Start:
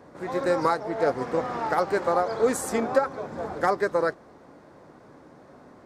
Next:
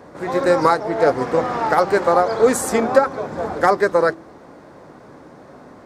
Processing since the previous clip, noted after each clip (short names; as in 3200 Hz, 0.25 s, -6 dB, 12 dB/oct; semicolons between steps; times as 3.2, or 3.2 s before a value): de-hum 46.7 Hz, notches 8; gain +8 dB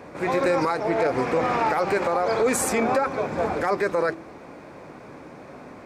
bell 2400 Hz +11.5 dB 0.3 oct; limiter -13.5 dBFS, peak gain reduction 12 dB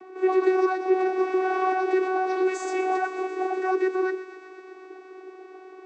vocoder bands 16, saw 374 Hz; thin delay 0.123 s, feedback 78%, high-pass 1400 Hz, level -19 dB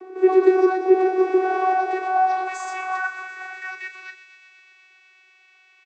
high-pass sweep 370 Hz -> 2600 Hz, 1.32–4.08; doubler 36 ms -9 dB